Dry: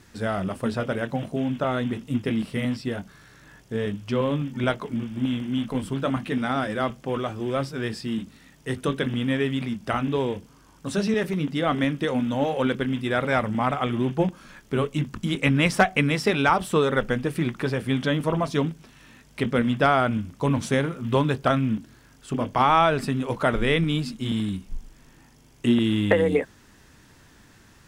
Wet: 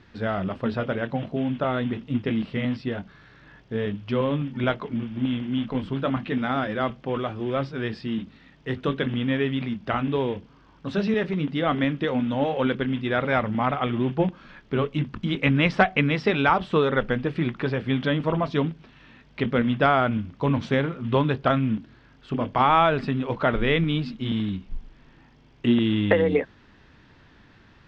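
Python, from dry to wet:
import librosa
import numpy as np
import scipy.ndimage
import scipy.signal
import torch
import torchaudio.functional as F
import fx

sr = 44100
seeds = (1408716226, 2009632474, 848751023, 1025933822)

y = scipy.signal.sosfilt(scipy.signal.butter(4, 4100.0, 'lowpass', fs=sr, output='sos'), x)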